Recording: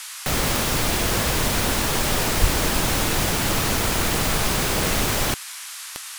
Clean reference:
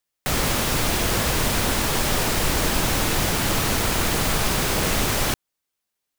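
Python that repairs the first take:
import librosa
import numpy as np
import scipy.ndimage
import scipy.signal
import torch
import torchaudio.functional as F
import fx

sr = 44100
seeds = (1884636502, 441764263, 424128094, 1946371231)

y = fx.fix_declick_ar(x, sr, threshold=10.0)
y = fx.fix_deplosive(y, sr, at_s=(2.4,))
y = fx.noise_reduce(y, sr, print_start_s=5.44, print_end_s=5.94, reduce_db=30.0)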